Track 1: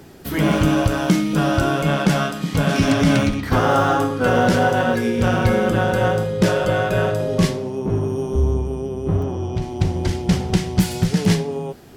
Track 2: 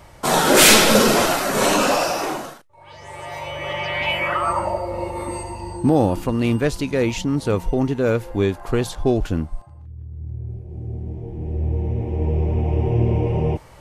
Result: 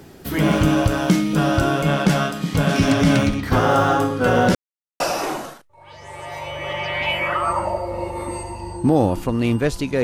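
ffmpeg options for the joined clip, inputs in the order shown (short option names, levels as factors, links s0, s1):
-filter_complex "[0:a]apad=whole_dur=10.03,atrim=end=10.03,asplit=2[s0][s1];[s0]atrim=end=4.55,asetpts=PTS-STARTPTS,afade=t=out:st=4.546:d=0.004:c=hsin[s2];[s1]atrim=start=4.55:end=5,asetpts=PTS-STARTPTS,volume=0[s3];[1:a]atrim=start=2:end=7.03,asetpts=PTS-STARTPTS,afade=t=in:d=0.004:c=hsin[s4];[s2][s3][s4]concat=n=3:v=0:a=1"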